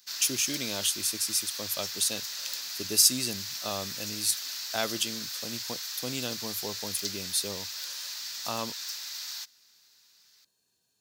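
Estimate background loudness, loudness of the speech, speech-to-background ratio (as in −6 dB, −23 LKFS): −34.5 LKFS, −29.5 LKFS, 5.0 dB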